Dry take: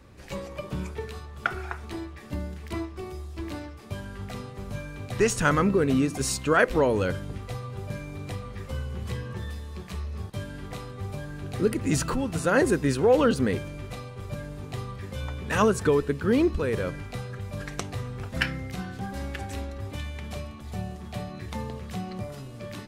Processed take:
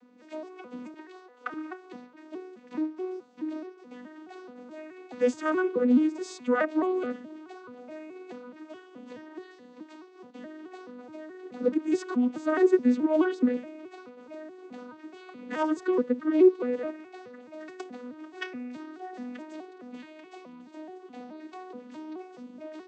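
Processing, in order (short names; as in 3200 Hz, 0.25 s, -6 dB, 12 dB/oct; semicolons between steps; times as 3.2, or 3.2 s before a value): arpeggiated vocoder major triad, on B3, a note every 0.213 s; 0.94–1.54 HPF 320 Hz 24 dB/oct; gain -1 dB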